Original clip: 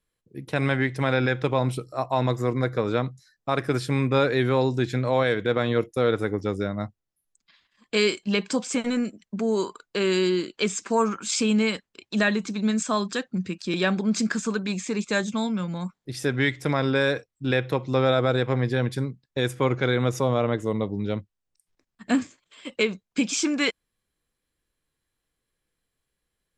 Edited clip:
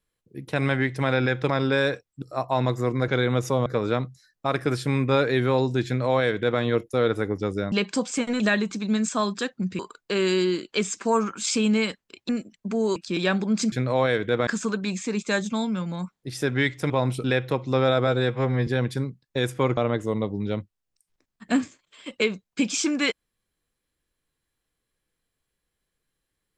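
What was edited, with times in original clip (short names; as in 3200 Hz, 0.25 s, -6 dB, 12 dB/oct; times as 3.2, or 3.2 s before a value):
1.49–1.83 swap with 16.72–17.45
4.89–5.64 copy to 14.29
6.75–8.29 cut
8.97–9.64 swap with 12.14–13.53
18.28–18.68 stretch 1.5×
19.78–20.36 move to 2.69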